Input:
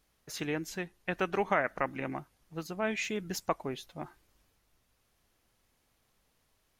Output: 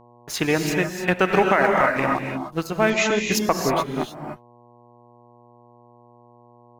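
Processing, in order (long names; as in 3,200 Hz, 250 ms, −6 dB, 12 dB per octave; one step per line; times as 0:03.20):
dead-zone distortion −50 dBFS
reverb reduction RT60 0.82 s
convolution reverb, pre-delay 3 ms, DRR 3 dB
hum with harmonics 120 Hz, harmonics 9, −66 dBFS −1 dB per octave
0:02.90–0:03.32: Chebyshev low-pass filter 7,700 Hz, order 10
boost into a limiter +20 dB
level −5.5 dB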